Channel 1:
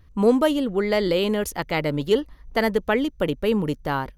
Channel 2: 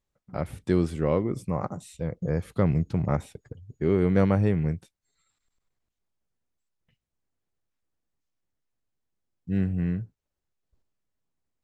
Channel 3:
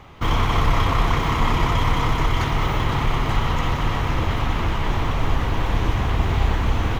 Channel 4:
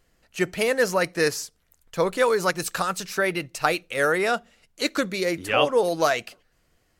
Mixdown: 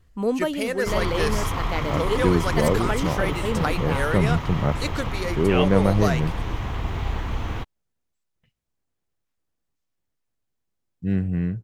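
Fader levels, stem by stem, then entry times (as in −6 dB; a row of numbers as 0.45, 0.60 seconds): −6.0, +2.5, −7.0, −5.0 decibels; 0.00, 1.55, 0.65, 0.00 seconds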